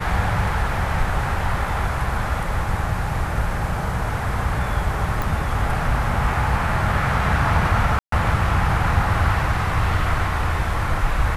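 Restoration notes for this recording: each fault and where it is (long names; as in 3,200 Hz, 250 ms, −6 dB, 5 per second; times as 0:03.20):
0:05.22: click
0:07.99–0:08.12: drop-out 133 ms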